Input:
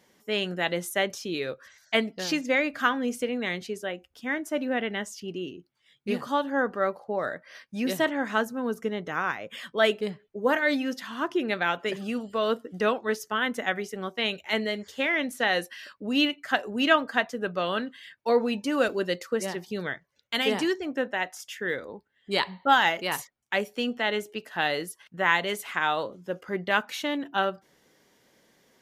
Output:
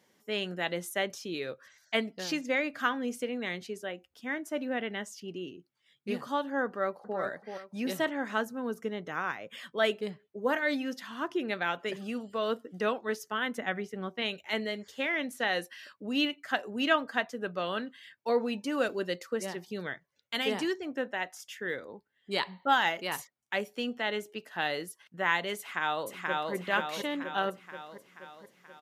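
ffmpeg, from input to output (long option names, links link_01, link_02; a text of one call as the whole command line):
ffmpeg -i in.wav -filter_complex "[0:a]asplit=2[link_01][link_02];[link_02]afade=type=in:start_time=6.66:duration=0.01,afade=type=out:start_time=7.19:duration=0.01,aecho=0:1:380|760|1140|1520:0.473151|0.141945|0.0425836|0.0127751[link_03];[link_01][link_03]amix=inputs=2:normalize=0,asettb=1/sr,asplit=3[link_04][link_05][link_06];[link_04]atrim=end=13.584[link_07];[link_05]atrim=start=13.58:end=14.22,asetpts=PTS-STARTPTS,afade=type=in:duration=0.004:curve=qsin,afade=type=out:start_time=0.636:duration=0.004:curve=qsin,bass=frequency=250:gain=6,treble=frequency=4000:gain=-8[link_08];[link_06]atrim=start=14.216[link_09];[link_07][link_08]acrossfade=duration=0.004:curve1=hsin:curve2=qsin[link_10];[link_10][link_09]acrossfade=duration=0.004:curve1=qsin:curve2=hsin,asplit=2[link_11][link_12];[link_12]afade=type=in:start_time=25.58:duration=0.01,afade=type=out:start_time=26.53:duration=0.01,aecho=0:1:480|960|1440|1920|2400|2880|3360|3840|4320:0.841395|0.504837|0.302902|0.181741|0.109045|0.0654269|0.0392561|0.0235537|0.0141322[link_13];[link_11][link_13]amix=inputs=2:normalize=0,highpass=89,volume=-5dB" out.wav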